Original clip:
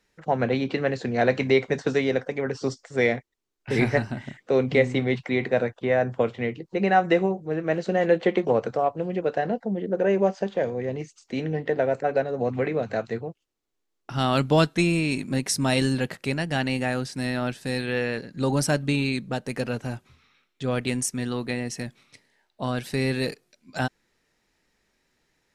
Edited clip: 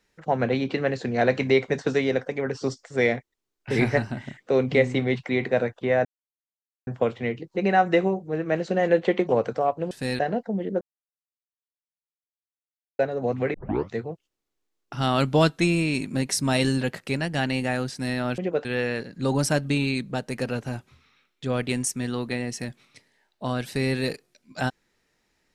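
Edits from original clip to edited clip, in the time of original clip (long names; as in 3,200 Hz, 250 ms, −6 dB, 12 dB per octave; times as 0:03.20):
0:06.05: splice in silence 0.82 s
0:09.09–0:09.36: swap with 0:17.55–0:17.83
0:09.98–0:12.16: silence
0:12.71: tape start 0.39 s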